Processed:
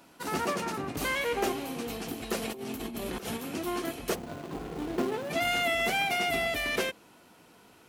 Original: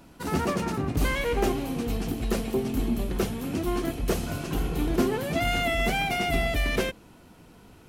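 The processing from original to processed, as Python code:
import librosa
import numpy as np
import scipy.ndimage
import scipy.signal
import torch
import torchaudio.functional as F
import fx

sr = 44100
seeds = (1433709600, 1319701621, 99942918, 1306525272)

y = fx.median_filter(x, sr, points=25, at=(4.14, 5.29), fade=0.02)
y = fx.highpass(y, sr, hz=510.0, slope=6)
y = fx.over_compress(y, sr, threshold_db=-39.0, ratio=-1.0, at=(2.4, 3.36), fade=0.02)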